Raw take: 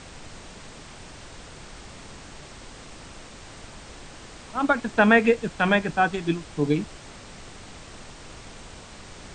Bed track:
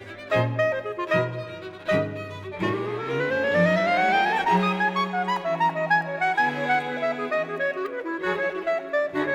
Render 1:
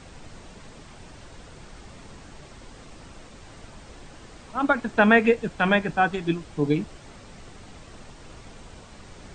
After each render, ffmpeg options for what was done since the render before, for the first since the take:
-af "afftdn=nr=6:nf=-44"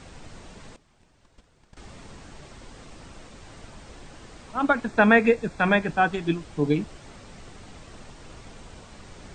-filter_complex "[0:a]asettb=1/sr,asplit=3[a][b][c];[a]atrim=end=0.764[d];[b]atrim=start=0.76:end=1.77,asetpts=PTS-STARTPTS,afade=t=in:d=0.004:c=qsin,afade=t=out:st=1.006:d=0.004:c=qsin,agate=range=-17dB:threshold=-41dB:ratio=16:release=100:detection=peak[e];[c]atrim=start=1.766[f];[d][e]acrossfade=d=0.004:c1=hsin:c2=qsin[g];[g][f]acrossfade=d=0.004:c1=qsin:c2=hsin,asettb=1/sr,asplit=3[h][i][j];[h]atrim=end=4.884[k];[i]atrim=start=4.88:end=5.83,asetpts=PTS-STARTPTS,afade=t=in:d=0.004:c=qsin,afade=t=out:st=0.946:d=0.004:c=qsin,asuperstop=centerf=3000:order=4:qfactor=5.6[l];[j]atrim=start=5.826[m];[k][l]acrossfade=d=0.004:c1=hsin:c2=qsin[n];[n][m]acrossfade=d=0.004:c1=qsin:c2=hsin"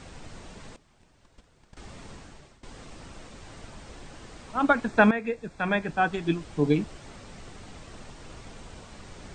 -filter_complex "[0:a]asplit=3[a][b][c];[a]atrim=end=2.63,asetpts=PTS-STARTPTS,afade=t=out:st=2.13:d=0.5:silence=0.11885[d];[b]atrim=start=2.63:end=5.11,asetpts=PTS-STARTPTS,afade=t=in:d=0.004:c=hsin:silence=0.11885,afade=t=out:st=2.476:d=0.004:c=hsin:silence=0.177828[e];[c]atrim=start=5.11,asetpts=PTS-STARTPTS,afade=t=in:d=1.4:silence=0.177828[f];[d][e][f]concat=n=3:v=0:a=1"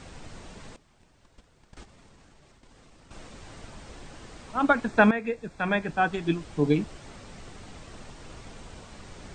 -filter_complex "[0:a]asettb=1/sr,asplit=3[a][b][c];[a]atrim=end=1.834[d];[b]atrim=start=1.83:end=3.11,asetpts=PTS-STARTPTS,afade=t=in:d=0.004:c=qsin,afade=t=out:st=1.276:d=0.004:c=qsin,acompressor=threshold=-52dB:ratio=5:attack=3.2:release=140:knee=1:detection=peak[e];[c]atrim=start=3.106[f];[d][e]acrossfade=d=0.004:c1=hsin:c2=qsin[g];[g][f]acrossfade=d=0.004:c1=qsin:c2=hsin"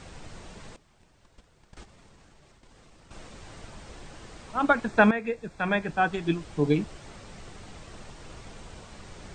-af "equalizer=f=260:w=6.9:g=-4.5"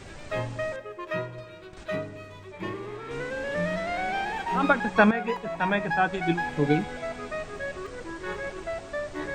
-filter_complex "[1:a]volume=-8.5dB[a];[0:a][a]amix=inputs=2:normalize=0"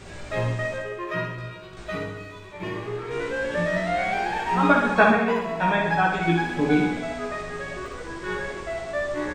-filter_complex "[0:a]asplit=2[a][b];[b]adelay=17,volume=-3dB[c];[a][c]amix=inputs=2:normalize=0,asplit=2[d][e];[e]aecho=0:1:60|126|198.6|278.5|366.3:0.631|0.398|0.251|0.158|0.1[f];[d][f]amix=inputs=2:normalize=0"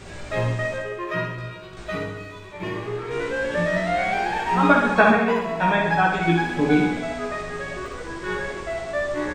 -af "volume=2dB,alimiter=limit=-3dB:level=0:latency=1"

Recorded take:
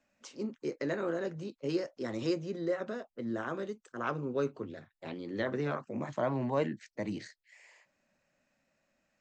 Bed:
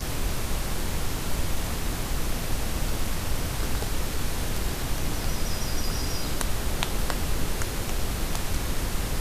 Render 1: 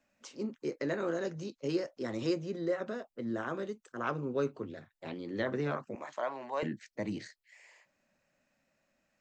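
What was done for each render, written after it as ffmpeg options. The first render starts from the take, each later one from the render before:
-filter_complex "[0:a]asettb=1/sr,asplit=3[a][b][c];[a]atrim=end=1.004[d];[b]atrim=start=1:end=1.68,asetpts=PTS-STARTPTS,afade=t=in:d=0.004:c=qsin,afade=t=out:st=0.676:d=0.004:c=qsin,lowpass=f=6.3k:t=q:w=2.5[e];[c]atrim=start=1.676[f];[d][e]acrossfade=d=0.004:c1=hsin:c2=qsin[g];[g][f]acrossfade=d=0.004:c1=qsin:c2=hsin,asettb=1/sr,asplit=3[h][i][j];[h]atrim=end=5.954[k];[i]atrim=start=5.95:end=6.63,asetpts=PTS-STARTPTS,afade=t=in:d=0.004:c=qsin,afade=t=out:st=0.676:d=0.004:c=qsin,highpass=650[l];[j]atrim=start=6.626[m];[k][l]acrossfade=d=0.004:c1=hsin:c2=qsin[n];[n][m]acrossfade=d=0.004:c1=qsin:c2=hsin"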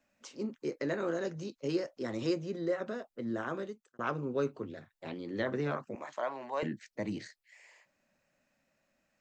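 -filter_complex "[0:a]asplit=2[a][b];[a]atrim=end=3.99,asetpts=PTS-STARTPTS,afade=t=out:st=3.57:d=0.42[c];[b]atrim=start=3.99,asetpts=PTS-STARTPTS,afade=t=in:d=0.004:c=hsin[d];[c][d]concat=n=2:v=0:a=1"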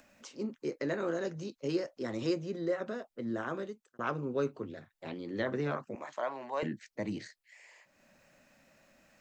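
-af "acompressor=mode=upward:threshold=-52dB:ratio=2.5"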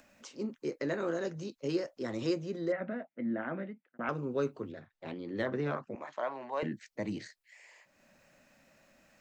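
-filter_complex "[0:a]asettb=1/sr,asplit=3[a][b][c];[a]atrim=end=2.724[d];[b]atrim=start=2.72:end=4.09,asetpts=PTS-STARTPTS,afade=t=in:d=0.004:c=qsin,afade=t=out:st=1.366:d=0.004:c=qsin,highpass=170,equalizer=f=180:t=q:w=4:g=9,equalizer=f=260:t=q:w=4:g=6,equalizer=f=410:t=q:w=4:g=-9,equalizer=f=650:t=q:w=4:g=3,equalizer=f=1.1k:t=q:w=4:g=-8,equalizer=f=2.1k:t=q:w=4:g=7,lowpass=f=2.5k:w=0.5412,lowpass=f=2.5k:w=1.3066[e];[c]atrim=start=4.086[f];[d][e]acrossfade=d=0.004:c1=hsin:c2=qsin[g];[g][f]acrossfade=d=0.004:c1=qsin:c2=hsin,asettb=1/sr,asplit=3[h][i][j];[h]atrim=end=4.724[k];[i]atrim=start=4.72:end=6.71,asetpts=PTS-STARTPTS,afade=t=in:d=0.004:c=qsin,afade=t=out:st=1.986:d=0.004:c=qsin,adynamicsmooth=sensitivity=5:basefreq=5.1k[l];[j]atrim=start=6.706[m];[k][l]acrossfade=d=0.004:c1=hsin:c2=qsin[n];[n][m]acrossfade=d=0.004:c1=qsin:c2=hsin"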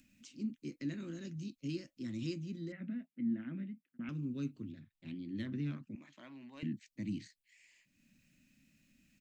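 -af "firequalizer=gain_entry='entry(280,0);entry(430,-23);entry(750,-27);entry(2500,-4);entry(5400,-7);entry(8600,-3)':delay=0.05:min_phase=1"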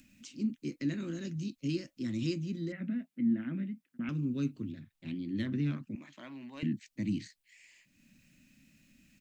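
-af "volume=6dB"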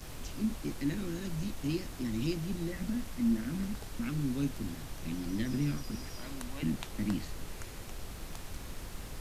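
-filter_complex "[1:a]volume=-15dB[a];[0:a][a]amix=inputs=2:normalize=0"

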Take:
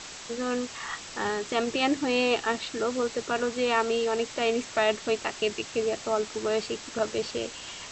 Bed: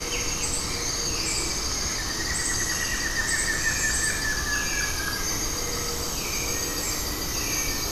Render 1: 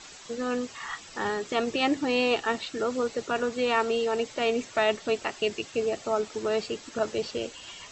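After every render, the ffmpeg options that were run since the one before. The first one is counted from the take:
-af "afftdn=nr=9:nf=-42"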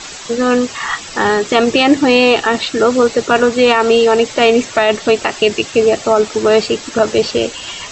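-af "acontrast=26,alimiter=level_in=11.5dB:limit=-1dB:release=50:level=0:latency=1"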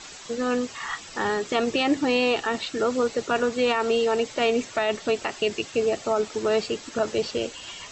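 -af "volume=-12dB"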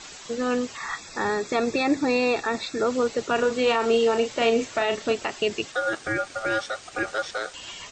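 -filter_complex "[0:a]asettb=1/sr,asplit=3[a][b][c];[a]atrim=end=0.774[d];[b]atrim=start=0.77:end=2.87,asetpts=PTS-STARTPTS,afade=t=in:d=0.004:c=qsin,afade=t=out:st=2.096:d=0.004:c=qsin,asuperstop=centerf=3000:order=20:qfactor=5.5[e];[c]atrim=start=2.866[f];[d][e]acrossfade=d=0.004:c1=hsin:c2=qsin[g];[g][f]acrossfade=d=0.004:c1=qsin:c2=hsin,asplit=3[h][i][j];[h]afade=t=out:st=3.37:d=0.02[k];[i]asplit=2[l][m];[m]adelay=35,volume=-7dB[n];[l][n]amix=inputs=2:normalize=0,afade=t=in:st=3.37:d=0.02,afade=t=out:st=5.13:d=0.02[o];[j]afade=t=in:st=5.13:d=0.02[p];[k][o][p]amix=inputs=3:normalize=0,asettb=1/sr,asplit=3[q][r][s];[q]atrim=end=5.724[t];[r]atrim=start=5.72:end=7.54,asetpts=PTS-STARTPTS,afade=t=in:d=0.004:c=qsin,afade=t=out:st=1.816:d=0.004:c=qsin,aeval=exprs='val(0)*sin(2*PI*990*n/s)':c=same[u];[s]atrim=start=7.536[v];[t][u]acrossfade=d=0.004:c1=hsin:c2=qsin[w];[w][v]acrossfade=d=0.004:c1=qsin:c2=hsin"

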